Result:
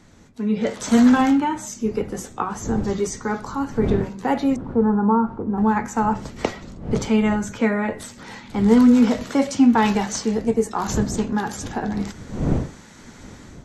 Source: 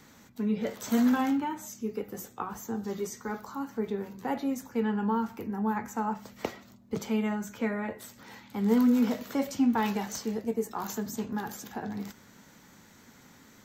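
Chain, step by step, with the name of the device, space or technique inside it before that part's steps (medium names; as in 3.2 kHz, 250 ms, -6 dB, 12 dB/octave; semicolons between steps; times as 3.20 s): 4.56–5.58 s: steep low-pass 1.4 kHz 48 dB/octave; smartphone video outdoors (wind noise 230 Hz -43 dBFS; level rider gain up to 10.5 dB; AAC 96 kbps 24 kHz)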